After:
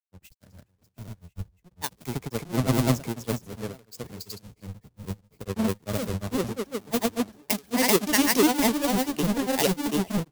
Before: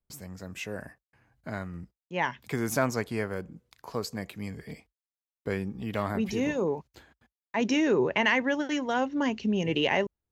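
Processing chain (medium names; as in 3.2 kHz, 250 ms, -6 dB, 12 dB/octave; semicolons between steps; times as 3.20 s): square wave that keeps the level; treble shelf 12 kHz +9 dB; delay 760 ms -20 dB; granulator, spray 670 ms; peaking EQ 1.7 kHz -5 dB 2.1 oct; three bands expanded up and down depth 100%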